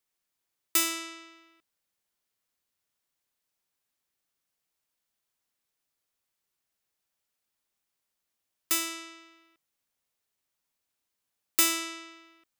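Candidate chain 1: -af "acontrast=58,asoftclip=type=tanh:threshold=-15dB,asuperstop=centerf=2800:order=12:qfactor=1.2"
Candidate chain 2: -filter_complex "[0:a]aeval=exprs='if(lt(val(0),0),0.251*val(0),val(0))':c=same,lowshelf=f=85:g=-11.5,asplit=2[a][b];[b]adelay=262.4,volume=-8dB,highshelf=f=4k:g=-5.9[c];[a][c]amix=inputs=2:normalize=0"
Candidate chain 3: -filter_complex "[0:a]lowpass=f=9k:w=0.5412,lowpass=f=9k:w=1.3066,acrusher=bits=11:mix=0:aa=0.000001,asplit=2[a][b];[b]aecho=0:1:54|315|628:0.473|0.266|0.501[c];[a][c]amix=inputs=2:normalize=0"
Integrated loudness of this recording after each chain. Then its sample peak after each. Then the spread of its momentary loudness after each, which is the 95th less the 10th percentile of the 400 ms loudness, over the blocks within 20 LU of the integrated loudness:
-25.5, -32.0, -31.0 LUFS; -10.5, -11.0, -13.0 dBFS; 18, 19, 14 LU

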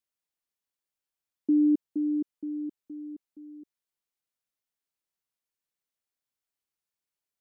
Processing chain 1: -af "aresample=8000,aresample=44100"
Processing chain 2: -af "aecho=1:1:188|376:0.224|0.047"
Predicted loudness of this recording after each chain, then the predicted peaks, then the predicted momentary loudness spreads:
-28.5, -27.5 LUFS; -18.0, -16.0 dBFS; 23, 22 LU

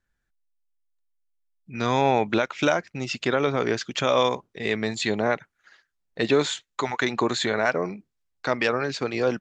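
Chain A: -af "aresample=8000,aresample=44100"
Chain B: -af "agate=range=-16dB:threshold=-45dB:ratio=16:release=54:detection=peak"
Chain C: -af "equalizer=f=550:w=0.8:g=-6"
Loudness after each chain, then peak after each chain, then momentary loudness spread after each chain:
-25.0, -25.0, -27.5 LUFS; -7.0, -7.0, -9.0 dBFS; 9, 9, 7 LU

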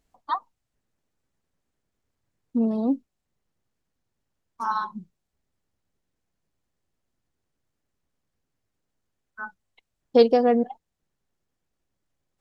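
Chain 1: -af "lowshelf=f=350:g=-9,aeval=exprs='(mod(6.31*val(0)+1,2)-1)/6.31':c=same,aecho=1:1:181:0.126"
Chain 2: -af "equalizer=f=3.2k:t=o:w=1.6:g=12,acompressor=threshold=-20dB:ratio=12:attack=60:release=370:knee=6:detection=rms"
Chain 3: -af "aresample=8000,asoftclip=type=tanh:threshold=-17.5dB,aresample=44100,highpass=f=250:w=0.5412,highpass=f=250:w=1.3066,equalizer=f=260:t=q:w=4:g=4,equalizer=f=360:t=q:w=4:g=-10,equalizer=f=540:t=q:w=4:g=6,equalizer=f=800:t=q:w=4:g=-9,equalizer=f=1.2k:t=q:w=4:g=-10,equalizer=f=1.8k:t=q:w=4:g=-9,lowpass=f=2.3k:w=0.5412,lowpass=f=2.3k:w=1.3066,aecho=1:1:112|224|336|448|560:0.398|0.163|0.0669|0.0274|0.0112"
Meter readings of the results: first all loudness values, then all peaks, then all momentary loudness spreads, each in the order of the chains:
-28.0, -28.0, -28.5 LUFS; -15.0, -9.0, -12.5 dBFS; 17, 11, 22 LU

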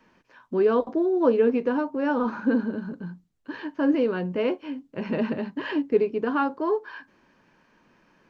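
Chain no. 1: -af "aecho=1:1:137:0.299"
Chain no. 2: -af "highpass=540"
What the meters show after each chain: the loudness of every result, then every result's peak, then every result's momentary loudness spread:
-25.0, -30.5 LUFS; -8.5, -13.5 dBFS; 14, 15 LU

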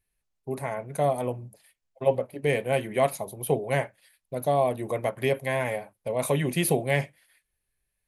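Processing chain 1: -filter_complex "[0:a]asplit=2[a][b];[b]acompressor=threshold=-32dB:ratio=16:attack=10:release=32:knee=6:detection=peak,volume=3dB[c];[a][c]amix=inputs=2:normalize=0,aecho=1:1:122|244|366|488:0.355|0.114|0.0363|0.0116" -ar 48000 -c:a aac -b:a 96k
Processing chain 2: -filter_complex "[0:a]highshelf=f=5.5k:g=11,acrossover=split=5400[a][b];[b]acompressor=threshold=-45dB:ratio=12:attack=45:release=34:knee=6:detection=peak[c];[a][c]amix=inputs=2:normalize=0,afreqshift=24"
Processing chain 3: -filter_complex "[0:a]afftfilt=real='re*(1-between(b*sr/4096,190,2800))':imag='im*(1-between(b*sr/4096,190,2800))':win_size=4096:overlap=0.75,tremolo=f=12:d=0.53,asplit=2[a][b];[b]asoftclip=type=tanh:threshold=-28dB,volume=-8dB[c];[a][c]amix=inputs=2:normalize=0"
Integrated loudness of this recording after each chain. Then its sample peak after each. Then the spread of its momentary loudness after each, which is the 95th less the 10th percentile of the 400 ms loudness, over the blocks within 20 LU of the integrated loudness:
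-23.5, -27.5, -35.0 LUFS; -6.0, -9.0, -16.5 dBFS; 10, 11, 15 LU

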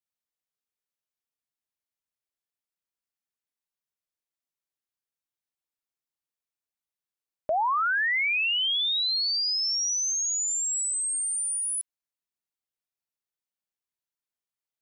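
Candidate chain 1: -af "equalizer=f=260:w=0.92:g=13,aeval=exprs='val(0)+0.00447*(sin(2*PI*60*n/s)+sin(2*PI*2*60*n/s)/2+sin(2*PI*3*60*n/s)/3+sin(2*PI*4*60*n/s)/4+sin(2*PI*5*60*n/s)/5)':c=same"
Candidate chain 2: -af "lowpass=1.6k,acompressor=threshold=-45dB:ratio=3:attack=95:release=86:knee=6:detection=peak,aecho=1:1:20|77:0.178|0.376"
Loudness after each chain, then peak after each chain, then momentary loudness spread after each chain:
-24.0, -40.0 LUFS; -15.5, -21.5 dBFS; 5, 19 LU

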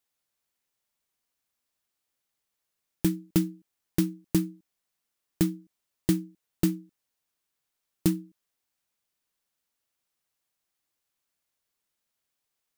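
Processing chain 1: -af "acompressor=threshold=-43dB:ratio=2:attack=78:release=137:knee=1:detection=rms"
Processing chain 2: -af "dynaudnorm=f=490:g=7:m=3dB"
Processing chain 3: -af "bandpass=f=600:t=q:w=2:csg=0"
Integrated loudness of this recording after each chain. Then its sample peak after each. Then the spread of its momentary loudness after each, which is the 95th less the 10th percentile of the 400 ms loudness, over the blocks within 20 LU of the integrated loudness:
-40.0, -27.0, -41.5 LUFS; -14.5, -6.5, -22.5 dBFS; 12, 9, 9 LU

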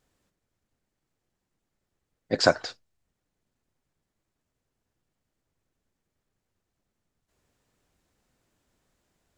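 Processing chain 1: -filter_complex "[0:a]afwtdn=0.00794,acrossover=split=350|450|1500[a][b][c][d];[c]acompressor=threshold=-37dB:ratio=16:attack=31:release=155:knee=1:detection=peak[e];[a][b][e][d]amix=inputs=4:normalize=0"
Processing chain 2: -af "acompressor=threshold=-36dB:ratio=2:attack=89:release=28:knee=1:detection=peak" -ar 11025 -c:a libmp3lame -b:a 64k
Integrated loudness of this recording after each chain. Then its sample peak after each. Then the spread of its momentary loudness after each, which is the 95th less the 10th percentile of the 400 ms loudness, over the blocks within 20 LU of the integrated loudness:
-28.0, -30.5 LUFS; -11.0, -9.0 dBFS; 13, 11 LU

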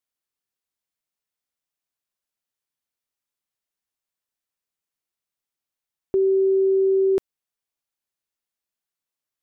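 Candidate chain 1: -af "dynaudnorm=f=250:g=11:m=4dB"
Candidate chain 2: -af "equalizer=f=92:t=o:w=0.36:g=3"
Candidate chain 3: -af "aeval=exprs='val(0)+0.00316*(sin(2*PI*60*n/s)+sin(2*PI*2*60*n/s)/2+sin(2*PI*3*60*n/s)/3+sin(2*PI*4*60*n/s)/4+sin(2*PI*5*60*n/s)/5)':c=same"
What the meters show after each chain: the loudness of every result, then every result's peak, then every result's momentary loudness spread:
-16.5, -20.0, -20.5 LUFS; -11.0, -15.0, -15.0 dBFS; 6, 6, 6 LU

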